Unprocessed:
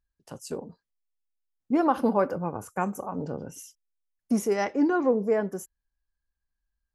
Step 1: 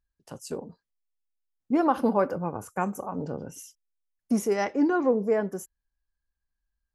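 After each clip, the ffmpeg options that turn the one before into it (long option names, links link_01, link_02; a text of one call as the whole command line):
ffmpeg -i in.wav -af anull out.wav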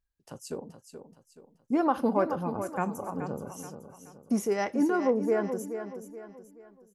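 ffmpeg -i in.wav -af "aecho=1:1:427|854|1281|1708:0.335|0.131|0.0509|0.0199,volume=-2.5dB" out.wav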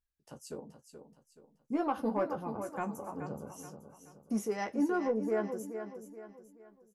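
ffmpeg -i in.wav -filter_complex "[0:a]asoftclip=type=tanh:threshold=-13.5dB,asplit=2[link_01][link_02];[link_02]adelay=14,volume=-6dB[link_03];[link_01][link_03]amix=inputs=2:normalize=0,volume=-6.5dB" out.wav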